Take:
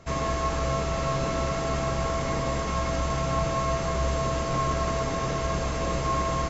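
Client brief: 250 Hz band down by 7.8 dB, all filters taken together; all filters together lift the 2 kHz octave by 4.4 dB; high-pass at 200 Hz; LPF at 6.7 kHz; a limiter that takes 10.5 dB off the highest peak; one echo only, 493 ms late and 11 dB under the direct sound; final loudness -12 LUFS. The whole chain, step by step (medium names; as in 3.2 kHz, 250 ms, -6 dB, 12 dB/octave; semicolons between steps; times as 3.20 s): high-pass 200 Hz; low-pass 6.7 kHz; peaking EQ 250 Hz -8 dB; peaking EQ 2 kHz +5.5 dB; peak limiter -26.5 dBFS; delay 493 ms -11 dB; trim +21.5 dB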